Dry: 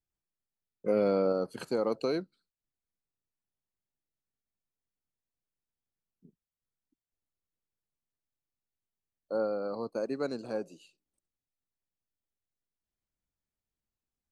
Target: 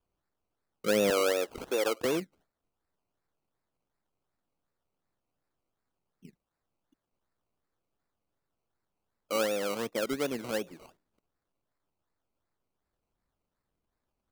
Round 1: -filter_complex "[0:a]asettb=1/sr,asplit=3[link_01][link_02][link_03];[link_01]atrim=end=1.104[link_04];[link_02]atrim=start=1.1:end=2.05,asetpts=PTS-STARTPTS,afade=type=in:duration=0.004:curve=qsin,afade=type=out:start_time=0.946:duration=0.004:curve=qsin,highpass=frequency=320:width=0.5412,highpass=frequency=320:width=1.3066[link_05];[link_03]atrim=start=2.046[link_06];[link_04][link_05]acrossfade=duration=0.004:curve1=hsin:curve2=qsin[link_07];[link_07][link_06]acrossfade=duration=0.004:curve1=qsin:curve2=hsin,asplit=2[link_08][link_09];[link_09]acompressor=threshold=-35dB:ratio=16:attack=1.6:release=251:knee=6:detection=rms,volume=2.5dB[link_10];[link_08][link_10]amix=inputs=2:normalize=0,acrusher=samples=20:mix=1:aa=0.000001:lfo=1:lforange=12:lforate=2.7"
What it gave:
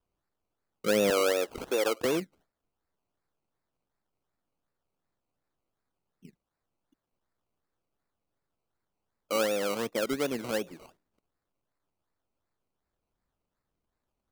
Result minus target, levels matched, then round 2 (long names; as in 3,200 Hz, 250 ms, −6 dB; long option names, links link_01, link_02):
downward compressor: peak gain reduction −6.5 dB
-filter_complex "[0:a]asettb=1/sr,asplit=3[link_01][link_02][link_03];[link_01]atrim=end=1.104[link_04];[link_02]atrim=start=1.1:end=2.05,asetpts=PTS-STARTPTS,afade=type=in:duration=0.004:curve=qsin,afade=type=out:start_time=0.946:duration=0.004:curve=qsin,highpass=frequency=320:width=0.5412,highpass=frequency=320:width=1.3066[link_05];[link_03]atrim=start=2.046[link_06];[link_04][link_05]acrossfade=duration=0.004:curve1=hsin:curve2=qsin[link_07];[link_07][link_06]acrossfade=duration=0.004:curve1=qsin:curve2=hsin,asplit=2[link_08][link_09];[link_09]acompressor=threshold=-42dB:ratio=16:attack=1.6:release=251:knee=6:detection=rms,volume=2.5dB[link_10];[link_08][link_10]amix=inputs=2:normalize=0,acrusher=samples=20:mix=1:aa=0.000001:lfo=1:lforange=12:lforate=2.7"